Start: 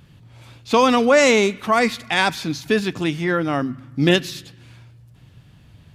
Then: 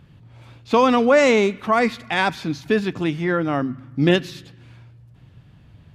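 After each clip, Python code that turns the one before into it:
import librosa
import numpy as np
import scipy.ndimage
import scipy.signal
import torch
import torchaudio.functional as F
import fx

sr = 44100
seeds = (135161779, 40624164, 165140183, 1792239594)

y = fx.high_shelf(x, sr, hz=3800.0, db=-11.0)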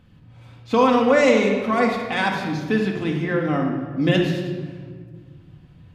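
y = fx.room_shoebox(x, sr, seeds[0], volume_m3=2000.0, walls='mixed', distance_m=2.0)
y = y * librosa.db_to_amplitude(-4.5)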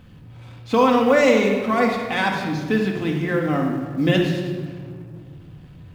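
y = fx.law_mismatch(x, sr, coded='mu')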